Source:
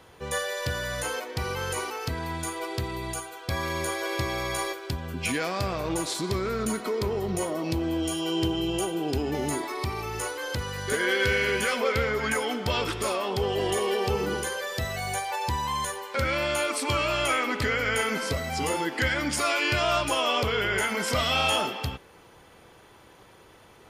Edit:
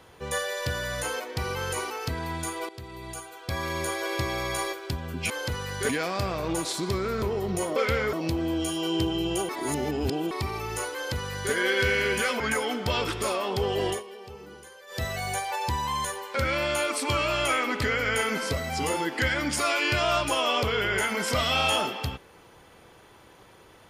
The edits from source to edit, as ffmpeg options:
-filter_complex "[0:a]asplit=12[a][b][c][d][e][f][g][h][i][j][k][l];[a]atrim=end=2.69,asetpts=PTS-STARTPTS,afade=t=out:st=2.686:d=0.004:c=hsin:silence=0.177828[m];[b]atrim=start=2.69:end=5.302,asetpts=PTS-STARTPTS,afade=t=in:d=1.43:c=qsin:silence=0.177828[n];[c]atrim=start=10.368:end=10.962[o];[d]atrim=start=5.298:end=6.632[p];[e]atrim=start=7.018:end=7.562[q];[f]atrim=start=11.828:end=12.202[r];[g]atrim=start=7.558:end=8.922[s];[h]atrim=start=8.918:end=9.742,asetpts=PTS-STARTPTS,areverse[t];[i]atrim=start=9.738:end=11.832[u];[j]atrim=start=12.198:end=13.83,asetpts=PTS-STARTPTS,afade=t=out:st=1.482:d=0.15:silence=0.141254[v];[k]atrim=start=13.83:end=14.67,asetpts=PTS-STARTPTS,volume=-17dB[w];[l]atrim=start=14.67,asetpts=PTS-STARTPTS,afade=t=in:d=0.15:silence=0.141254[x];[m][n]concat=n=2:v=0:a=1[y];[y][o]acrossfade=d=0.004:c1=hsin:c2=hsin[z];[z][p]acrossfade=d=0.004:c1=hsin:c2=hsin[aa];[aa][q]acrossfade=d=0.004:c1=hsin:c2=hsin[ab];[ab][r]acrossfade=d=0.004:c1=hsin:c2=hsin[ac];[ac][s]acrossfade=d=0.004:c1=hsin:c2=hsin[ad];[ad][t]acrossfade=d=0.004:c1=hsin:c2=hsin[ae];[ae][u]acrossfade=d=0.004:c1=hsin:c2=hsin[af];[v][w][x]concat=n=3:v=0:a=1[ag];[af][ag]acrossfade=d=0.004:c1=hsin:c2=hsin"

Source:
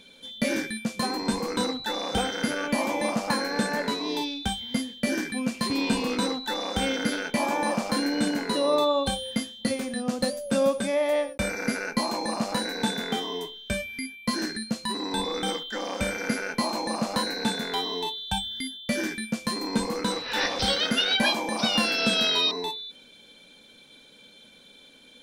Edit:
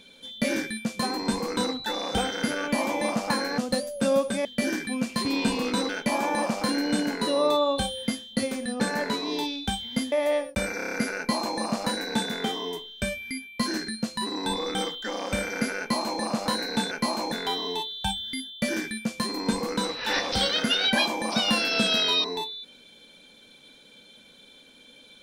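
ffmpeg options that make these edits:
-filter_complex "[0:a]asplit=13[a][b][c][d][e][f][g][h][i][j][k][l][m];[a]atrim=end=3.582[n];[b]atrim=start=10.078:end=10.952[o];[c]atrim=start=4.898:end=6.342[p];[d]atrim=start=7.168:end=10.082[q];[e]atrim=start=3.578:end=4.902[r];[f]atrim=start=10.948:end=11.632[s];[g]atrim=start=11.598:end=11.632[t];[h]atrim=start=11.598:end=11.632[u];[i]atrim=start=11.598:end=11.632[v];[j]atrim=start=11.598:end=11.632[w];[k]atrim=start=11.598:end=17.592[x];[l]atrim=start=16.468:end=16.882[y];[m]atrim=start=17.588[z];[n][o]acrossfade=d=0.004:c1=hsin:c2=hsin[aa];[aa][p]acrossfade=d=0.004:c1=hsin:c2=hsin[ab];[ab][q]acrossfade=d=0.004:c1=hsin:c2=hsin[ac];[ac][r]acrossfade=d=0.004:c1=hsin:c2=hsin[ad];[ad][s]acrossfade=d=0.004:c1=hsin:c2=hsin[ae];[ae][t]acrossfade=d=0.004:c1=hsin:c2=hsin[af];[af][u]acrossfade=d=0.004:c1=hsin:c2=hsin[ag];[ag][v]acrossfade=d=0.004:c1=hsin:c2=hsin[ah];[ah][w]acrossfade=d=0.004:c1=hsin:c2=hsin[ai];[ai][x]acrossfade=d=0.004:c1=hsin:c2=hsin[aj];[aj][y]acrossfade=d=0.004:c1=hsin:c2=hsin[ak];[ak][z]acrossfade=d=0.004:c1=hsin:c2=hsin"

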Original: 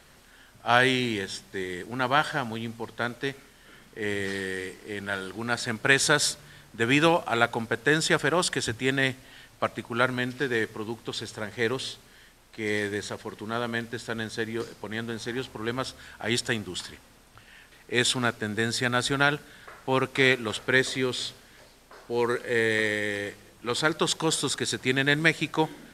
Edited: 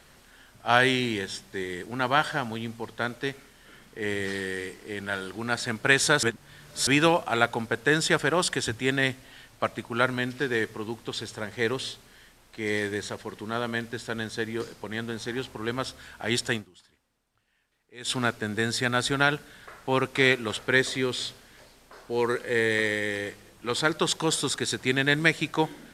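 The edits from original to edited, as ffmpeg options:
-filter_complex "[0:a]asplit=5[a][b][c][d][e];[a]atrim=end=6.232[f];[b]atrim=start=6.228:end=6.872,asetpts=PTS-STARTPTS,areverse[g];[c]atrim=start=6.868:end=16.71,asetpts=PTS-STARTPTS,afade=t=out:st=9.692:d=0.15:c=qua:silence=0.0891251[h];[d]atrim=start=16.71:end=17.98,asetpts=PTS-STARTPTS,volume=-21dB[i];[e]atrim=start=17.98,asetpts=PTS-STARTPTS,afade=t=in:d=0.15:c=qua:silence=0.0891251[j];[f][g]acrossfade=d=0.004:c1=hsin:c2=hsin[k];[h][i][j]concat=n=3:v=0:a=1[l];[k][l]acrossfade=d=0.004:c1=hsin:c2=hsin"

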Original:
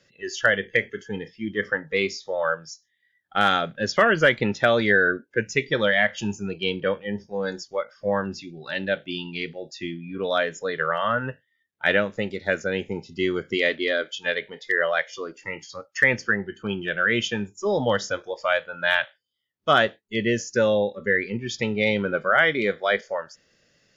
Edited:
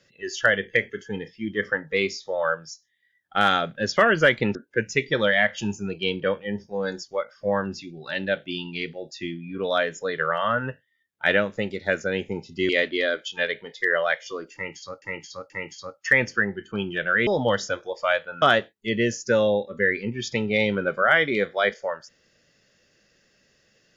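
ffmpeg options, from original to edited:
-filter_complex "[0:a]asplit=7[a][b][c][d][e][f][g];[a]atrim=end=4.552[h];[b]atrim=start=5.148:end=13.292[i];[c]atrim=start=13.558:end=15.892[j];[d]atrim=start=15.408:end=15.892[k];[e]atrim=start=15.408:end=17.182[l];[f]atrim=start=17.678:end=18.832[m];[g]atrim=start=19.688[n];[h][i]acrossfade=d=0.004:c1=hsin:c2=hsin[o];[o][j]acrossfade=d=0.004:c1=hsin:c2=hsin[p];[p][k]acrossfade=d=0.004:c1=hsin:c2=hsin[q];[q][l]acrossfade=d=0.004:c1=hsin:c2=hsin[r];[r][m]acrossfade=d=0.004:c1=hsin:c2=hsin[s];[s][n]acrossfade=d=0.004:c1=hsin:c2=hsin"

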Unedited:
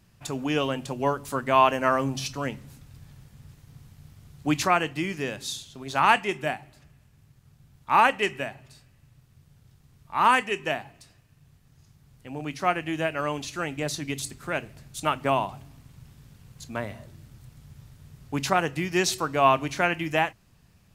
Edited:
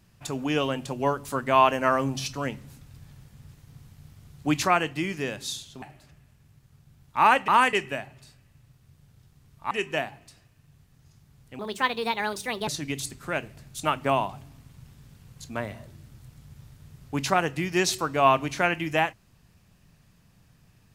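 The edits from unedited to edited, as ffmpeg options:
-filter_complex "[0:a]asplit=7[a][b][c][d][e][f][g];[a]atrim=end=5.822[h];[b]atrim=start=6.548:end=8.212[i];[c]atrim=start=10.188:end=10.442[j];[d]atrim=start=8.208:end=10.192[k];[e]atrim=start=10.438:end=12.324[l];[f]atrim=start=12.32:end=13.87,asetpts=PTS-STARTPTS,asetrate=63063,aresample=44100[m];[g]atrim=start=13.866[n];[h][i]acrossfade=d=0.004:c1=hsin:c2=hsin[o];[o][j]acrossfade=d=0.004:c1=hsin:c2=hsin[p];[p][k]acrossfade=d=0.004:c1=hsin:c2=hsin[q];[q][l]acrossfade=d=0.004:c1=hsin:c2=hsin[r];[r][m]acrossfade=d=0.004:c1=hsin:c2=hsin[s];[s][n]acrossfade=d=0.004:c1=hsin:c2=hsin"

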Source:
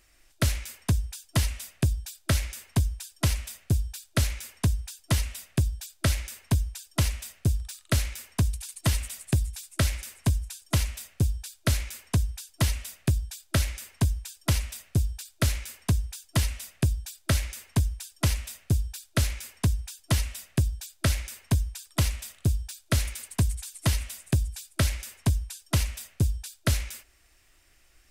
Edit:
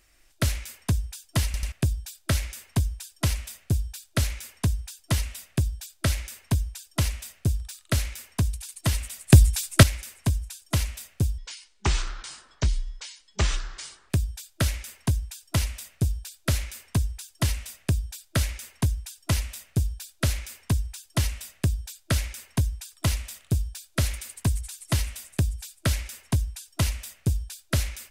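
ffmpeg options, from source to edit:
-filter_complex "[0:a]asplit=8[a][b][c][d][e][f][g][h];[a]atrim=end=1.542[i];[b]atrim=start=1.448:end=1.542[j];[c]atrim=start=1.448:end=1.542[k];[d]atrim=start=1.718:end=9.302[l];[e]atrim=start=9.298:end=9.832,asetpts=PTS-STARTPTS,volume=11.5dB[m];[f]atrim=start=9.828:end=11.384[n];[g]atrim=start=11.38:end=13.04,asetpts=PTS-STARTPTS,asetrate=26901,aresample=44100[o];[h]atrim=start=13.036[p];[i][j]acrossfade=d=0.004:c1=hsin:c2=hsin[q];[q][k]acrossfade=d=0.004:c1=hsin:c2=hsin[r];[r][l]acrossfade=d=0.004:c1=hsin:c2=hsin[s];[s][m]acrossfade=d=0.004:c1=hsin:c2=hsin[t];[t][n]acrossfade=d=0.004:c1=hsin:c2=hsin[u];[u][o]acrossfade=d=0.004:c1=hsin:c2=hsin[v];[v][p]acrossfade=d=0.004:c1=hsin:c2=hsin"

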